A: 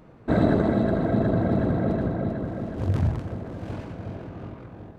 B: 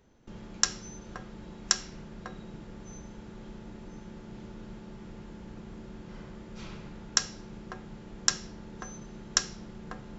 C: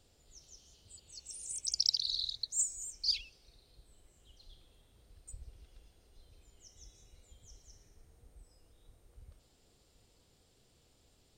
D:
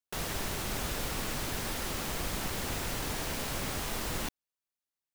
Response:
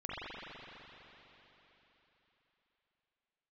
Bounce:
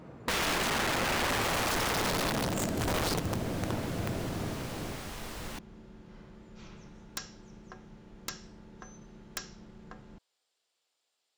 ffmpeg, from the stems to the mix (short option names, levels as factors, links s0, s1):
-filter_complex "[0:a]highpass=59,bandreject=f=50:t=h:w=6,bandreject=f=100:t=h:w=6,volume=1.26[s0];[1:a]volume=0.473[s1];[2:a]highpass=880,volume=0.473[s2];[3:a]adelay=1300,volume=0.531[s3];[s0][s1][s2][s3]amix=inputs=4:normalize=0,aeval=exprs='(mod(11.9*val(0)+1,2)-1)/11.9':c=same,highshelf=f=8300:g=-7,acompressor=threshold=0.0398:ratio=3"